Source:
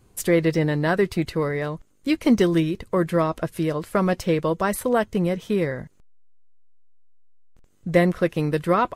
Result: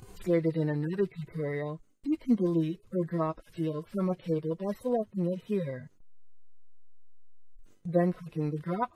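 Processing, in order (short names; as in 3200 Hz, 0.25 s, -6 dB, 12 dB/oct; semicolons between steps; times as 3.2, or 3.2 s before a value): median-filter separation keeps harmonic; gate with hold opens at -51 dBFS; upward compressor, threshold -27 dBFS; gain -7 dB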